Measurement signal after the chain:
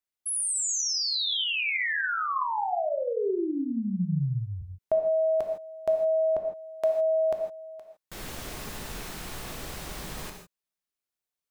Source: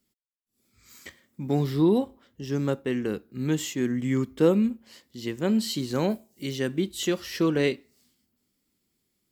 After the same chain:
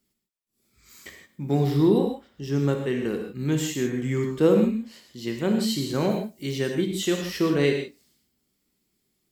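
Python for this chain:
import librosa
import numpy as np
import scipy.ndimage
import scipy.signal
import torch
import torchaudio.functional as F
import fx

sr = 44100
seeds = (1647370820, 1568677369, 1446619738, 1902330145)

y = fx.rev_gated(x, sr, seeds[0], gate_ms=180, shape='flat', drr_db=2.5)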